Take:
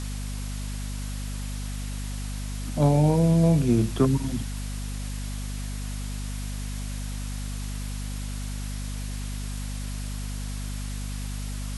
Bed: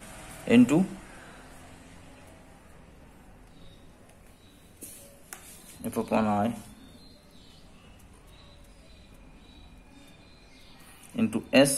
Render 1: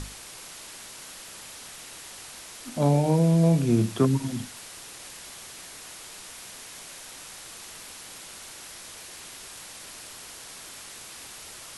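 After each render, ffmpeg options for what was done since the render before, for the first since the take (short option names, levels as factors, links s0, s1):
-af "bandreject=f=50:t=h:w=6,bandreject=f=100:t=h:w=6,bandreject=f=150:t=h:w=6,bandreject=f=200:t=h:w=6,bandreject=f=250:t=h:w=6,bandreject=f=300:t=h:w=6"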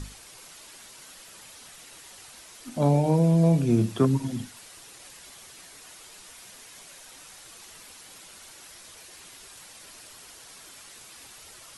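-af "afftdn=nr=7:nf=-44"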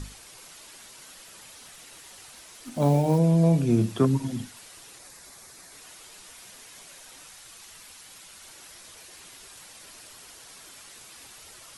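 -filter_complex "[0:a]asettb=1/sr,asplit=3[s0][s1][s2];[s0]atrim=end=1.554[s3];[s1]atrim=start=1.55:end=3.18,asetpts=PTS-STARTPTS,afade=t=in:d=0.004:c=qsin,afade=t=out:st=1.626:d=0.004:c=qsin,acrusher=bits=7:mode=log:mix=0:aa=0.000001[s4];[s2]atrim=start=3.176[s5];[s3][s4]acrossfade=d=0.004:c1=hsin:c2=qsin[s6];[s6][s5]acrossfade=d=0.004:c1=qsin:c2=hsin,asettb=1/sr,asplit=3[s7][s8][s9];[s7]atrim=end=4.994[s10];[s8]atrim=start=4.99:end=5.72,asetpts=PTS-STARTPTS,afade=t=in:d=0.004:c=qsin,afade=t=out:st=0.726:d=0.004:c=qsin,equalizer=f=3000:w=3.1:g=-10[s11];[s9]atrim=start=5.716[s12];[s10][s11]acrossfade=d=0.004:c1=hsin:c2=qsin[s13];[s13][s12]acrossfade=d=0.004:c1=qsin:c2=hsin,asettb=1/sr,asplit=3[s14][s15][s16];[s14]atrim=end=7.294[s17];[s15]atrim=start=7.29:end=8.44,asetpts=PTS-STARTPTS,afade=t=in:d=0.004:c=qsin,afade=t=out:st=1.146:d=0.004:c=qsin,equalizer=f=370:t=o:w=2.1:g=-5[s18];[s16]atrim=start=8.436[s19];[s17][s18]acrossfade=d=0.004:c1=hsin:c2=qsin[s20];[s20][s19]acrossfade=d=0.004:c1=qsin:c2=hsin"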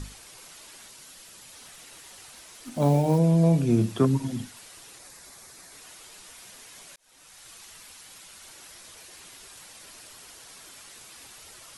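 -filter_complex "[0:a]asettb=1/sr,asplit=3[s0][s1][s2];[s0]atrim=end=0.884[s3];[s1]atrim=start=0.88:end=1.53,asetpts=PTS-STARTPTS,afade=t=in:d=0.004:c=qsin,afade=t=out:st=0.646:d=0.004:c=qsin,acrossover=split=320|3000[s4][s5][s6];[s5]acompressor=threshold=0.002:ratio=6:attack=3.2:release=140:knee=2.83:detection=peak[s7];[s4][s7][s6]amix=inputs=3:normalize=0[s8];[s2]atrim=start=1.526[s9];[s3][s8]acrossfade=d=0.004:c1=hsin:c2=qsin[s10];[s10][s9]acrossfade=d=0.004:c1=qsin:c2=hsin,asplit=2[s11][s12];[s11]atrim=end=6.96,asetpts=PTS-STARTPTS,afade=t=out:st=6.956:d=0.004:c=hsin[s13];[s12]atrim=start=6.96,asetpts=PTS-STARTPTS,afade=t=in:d=0.53[s14];[s13][s14]concat=n=2:v=0:a=1"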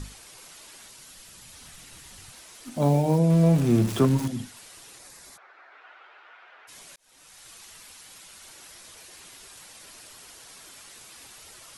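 -filter_complex "[0:a]asettb=1/sr,asplit=3[s0][s1][s2];[s0]atrim=end=0.804[s3];[s1]atrim=start=0.8:end=2.32,asetpts=PTS-STARTPTS,afade=t=in:d=0.004:c=qsin,afade=t=out:st=1.516:d=0.004:c=qsin,asubboost=boost=10:cutoff=210[s4];[s2]atrim=start=2.316[s5];[s3][s4]acrossfade=d=0.004:c1=hsin:c2=qsin[s6];[s6][s5]acrossfade=d=0.004:c1=qsin:c2=hsin,asettb=1/sr,asplit=3[s7][s8][s9];[s7]atrim=end=3.304[s10];[s8]atrim=start=3.3:end=4.28,asetpts=PTS-STARTPTS,afade=t=in:d=0.004:c=qsin,afade=t=out:st=0.976:d=0.004:c=qsin,aeval=exprs='val(0)+0.5*0.0335*sgn(val(0))':c=same[s11];[s9]atrim=start=4.276[s12];[s10][s11]acrossfade=d=0.004:c1=hsin:c2=qsin[s13];[s13][s12]acrossfade=d=0.004:c1=qsin:c2=hsin,asplit=3[s14][s15][s16];[s14]afade=t=out:st=5.36:d=0.02[s17];[s15]highpass=f=420:w=0.5412,highpass=f=420:w=1.3066,equalizer=f=470:t=q:w=4:g=-4,equalizer=f=790:t=q:w=4:g=4,equalizer=f=1400:t=q:w=4:g=10,lowpass=f=2600:w=0.5412,lowpass=f=2600:w=1.3066,afade=t=in:st=5.36:d=0.02,afade=t=out:st=6.67:d=0.02[s18];[s16]afade=t=in:st=6.67:d=0.02[s19];[s17][s18][s19]amix=inputs=3:normalize=0"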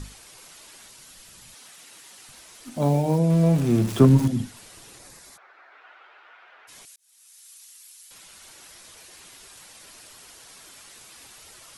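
-filter_complex "[0:a]asettb=1/sr,asplit=3[s0][s1][s2];[s0]atrim=end=1.544[s3];[s1]atrim=start=1.54:end=2.29,asetpts=PTS-STARTPTS,afade=t=in:d=0.004:c=qsin,afade=t=out:st=0.746:d=0.004:c=qsin,highpass=320[s4];[s2]atrim=start=2.286[s5];[s3][s4]acrossfade=d=0.004:c1=hsin:c2=qsin[s6];[s6][s5]acrossfade=d=0.004:c1=qsin:c2=hsin,asettb=1/sr,asplit=3[s7][s8][s9];[s7]atrim=end=4.004[s10];[s8]atrim=start=4:end=5.19,asetpts=PTS-STARTPTS,afade=t=in:d=0.004:c=qsin,afade=t=out:st=1.186:d=0.004:c=qsin,lowshelf=f=460:g=8[s11];[s9]atrim=start=5.186[s12];[s10][s11]acrossfade=d=0.004:c1=hsin:c2=qsin[s13];[s13][s12]acrossfade=d=0.004:c1=qsin:c2=hsin,asettb=1/sr,asplit=3[s14][s15][s16];[s14]atrim=end=6.854[s17];[s15]atrim=start=6.85:end=8.11,asetpts=PTS-STARTPTS,afade=t=in:d=0.004:c=qsin,afade=t=out:st=1.256:d=0.004:c=qsin,aderivative[s18];[s16]atrim=start=8.106[s19];[s17][s18]acrossfade=d=0.004:c1=hsin:c2=qsin[s20];[s20][s19]acrossfade=d=0.004:c1=qsin:c2=hsin"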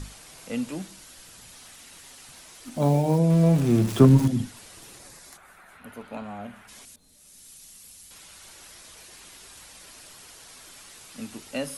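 -filter_complex "[1:a]volume=0.266[s0];[0:a][s0]amix=inputs=2:normalize=0"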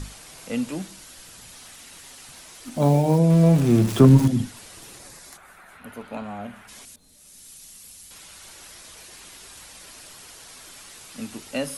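-af "volume=1.41,alimiter=limit=0.708:level=0:latency=1"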